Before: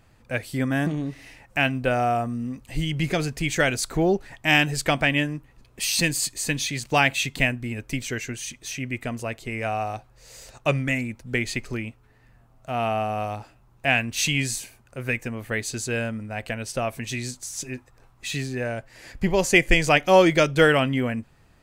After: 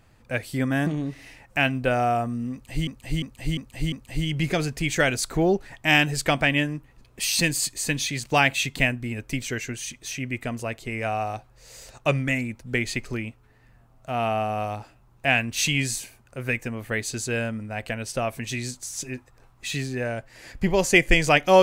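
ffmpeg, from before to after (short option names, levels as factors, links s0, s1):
-filter_complex "[0:a]asplit=5[s0][s1][s2][s3][s4];[s0]atrim=end=2.872[s5];[s1]atrim=start=2.518:end=2.872[s6];[s2]atrim=start=2.518:end=2.872[s7];[s3]atrim=start=2.518:end=2.872[s8];[s4]atrim=start=2.518[s9];[s5][s6]acrossfade=d=0.004:c1=hsin:c2=hsin[s10];[s10][s7]acrossfade=d=0.004:c1=hsin:c2=hsin[s11];[s11][s8]acrossfade=d=0.004:c1=hsin:c2=hsin[s12];[s12][s9]acrossfade=d=0.004:c1=hsin:c2=hsin"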